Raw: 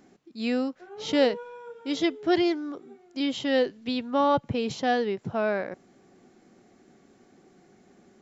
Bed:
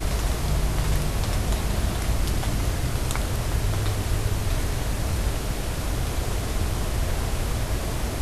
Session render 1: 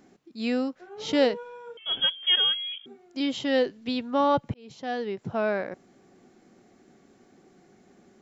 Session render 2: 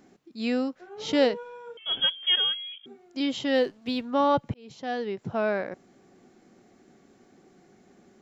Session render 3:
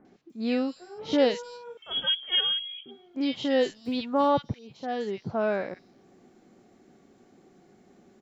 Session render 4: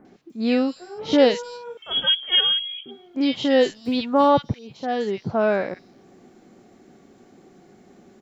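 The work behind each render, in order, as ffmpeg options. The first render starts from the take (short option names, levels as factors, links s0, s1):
-filter_complex "[0:a]asettb=1/sr,asplit=3[s0][s1][s2];[s0]atrim=end=1.774[s3];[s1]atrim=start=1.77:end=2.86,asetpts=PTS-STARTPTS,afade=t=in:d=0.004:c=qsin,afade=t=out:st=1.086:d=0.004:c=qsin,lowpass=f=3100:t=q:w=0.5098,lowpass=f=3100:t=q:w=0.6013,lowpass=f=3100:t=q:w=0.9,lowpass=f=3100:t=q:w=2.563,afreqshift=-3600[s4];[s2]atrim=start=2.856[s5];[s3][s4]acrossfade=d=0.004:c1=hsin:c2=qsin[s6];[s6][s5]acrossfade=d=0.004:c1=qsin:c2=hsin,asplit=2[s7][s8];[s7]atrim=end=4.54,asetpts=PTS-STARTPTS,afade=t=out:st=4.536:d=0.004:c=hsin[s9];[s8]atrim=start=4.54,asetpts=PTS-STARTPTS,afade=t=in:d=0.81[s10];[s9][s10]concat=n=2:v=0:a=1"
-filter_complex "[0:a]asettb=1/sr,asplit=3[s0][s1][s2];[s0]atrim=end=3.554[s3];[s1]atrim=start=3.55:end=4.05,asetpts=PTS-STARTPTS,afade=t=in:d=0.004:c=qsin,afade=t=out:st=0.496:d=0.004:c=qsin,aeval=exprs='sgn(val(0))*max(abs(val(0))-0.00168,0)':c=same[s4];[s2]atrim=start=4.046[s5];[s3][s4]acrossfade=d=0.004:c1=hsin:c2=qsin[s6];[s6][s5]acrossfade=d=0.004:c1=qsin:c2=hsin,asplit=2[s7][s8];[s7]atrim=end=2.83,asetpts=PTS-STARTPTS,afade=t=out:st=2.19:d=0.64:silence=0.446684[s9];[s8]atrim=start=2.83,asetpts=PTS-STARTPTS,afade=t=in:d=0.004:c=hsin:silence=0.446684[s10];[s9][s10]concat=n=2:v=0:a=1"
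-filter_complex "[0:a]acrossover=split=1800|6000[s0][s1][s2];[s1]adelay=50[s3];[s2]adelay=300[s4];[s0][s3][s4]amix=inputs=3:normalize=0"
-af "volume=2.11"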